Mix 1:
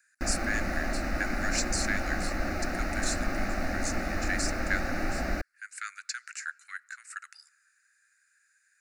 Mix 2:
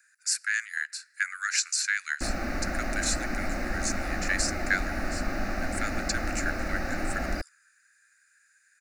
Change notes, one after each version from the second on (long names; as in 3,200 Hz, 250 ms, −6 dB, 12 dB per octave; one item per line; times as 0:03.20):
speech +4.5 dB
background: entry +2.00 s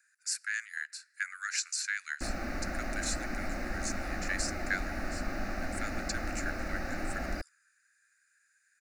speech −6.5 dB
background −5.0 dB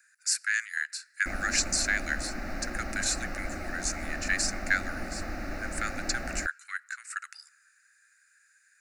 speech +6.5 dB
background: entry −0.95 s